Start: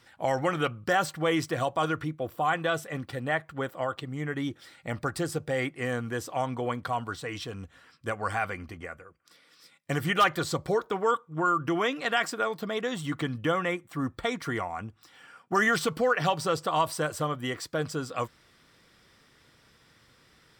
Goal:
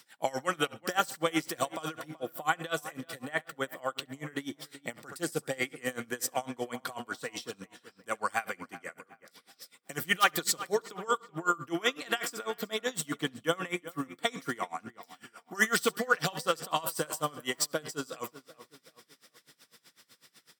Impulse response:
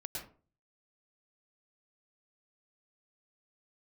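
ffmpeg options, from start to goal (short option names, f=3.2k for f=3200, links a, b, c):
-filter_complex "[0:a]asplit=2[a][b];[b]adelay=378,lowpass=f=2.7k:p=1,volume=-15dB,asplit=2[c][d];[d]adelay=378,lowpass=f=2.7k:p=1,volume=0.41,asplit=2[e][f];[f]adelay=378,lowpass=f=2.7k:p=1,volume=0.41,asplit=2[g][h];[h]adelay=378,lowpass=f=2.7k:p=1,volume=0.41[i];[c][e][g][i]amix=inputs=4:normalize=0[j];[a][j]amix=inputs=2:normalize=0,crystalizer=i=3.5:c=0,highpass=f=160:w=0.5412,highpass=f=160:w=1.3066,asplit=2[k][l];[l]aecho=0:1:68|136|204:0.141|0.0396|0.0111[m];[k][m]amix=inputs=2:normalize=0,aeval=exprs='val(0)*pow(10,-24*(0.5-0.5*cos(2*PI*8*n/s))/20)':c=same"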